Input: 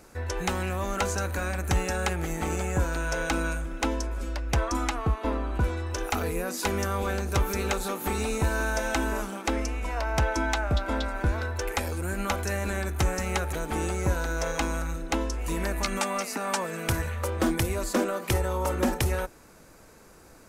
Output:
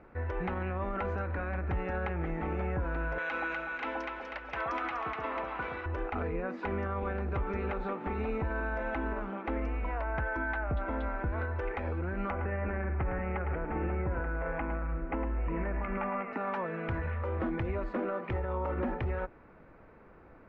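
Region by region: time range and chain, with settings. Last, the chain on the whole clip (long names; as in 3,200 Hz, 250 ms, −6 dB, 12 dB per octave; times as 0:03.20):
0:03.18–0:05.86: meter weighting curve ITU-R 468 + delay that swaps between a low-pass and a high-pass 123 ms, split 820 Hz, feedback 64%, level −2 dB
0:10.14–0:10.60: Butterworth low-pass 9,500 Hz + parametric band 1,600 Hz +9.5 dB 0.29 octaves
0:12.30–0:16.33: Butterworth low-pass 2,700 Hz + single-tap delay 108 ms −11 dB
whole clip: low-pass filter 2,200 Hz 24 dB per octave; notch filter 1,600 Hz, Q 23; brickwall limiter −23 dBFS; level −2 dB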